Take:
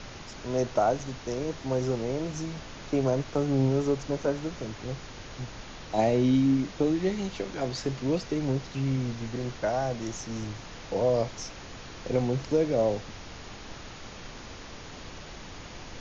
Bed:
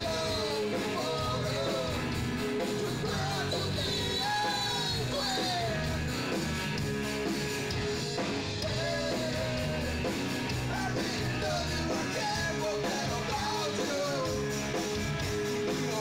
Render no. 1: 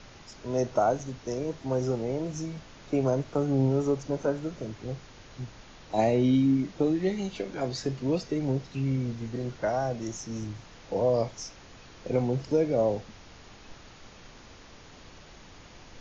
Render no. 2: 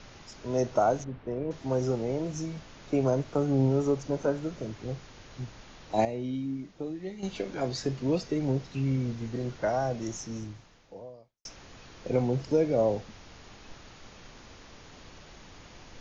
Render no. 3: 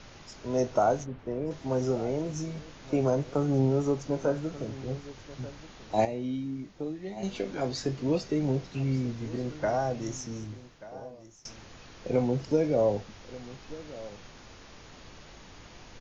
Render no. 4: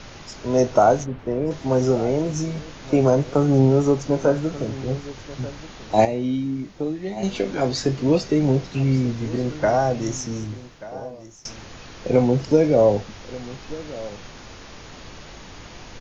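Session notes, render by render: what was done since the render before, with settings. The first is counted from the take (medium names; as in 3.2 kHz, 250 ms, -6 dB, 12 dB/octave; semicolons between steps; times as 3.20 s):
noise print and reduce 7 dB
1.04–1.51 s: distance through air 490 m; 6.05–7.23 s: gain -10.5 dB; 10.22–11.45 s: fade out quadratic
doubling 20 ms -12 dB; delay 1185 ms -17.5 dB
trim +9 dB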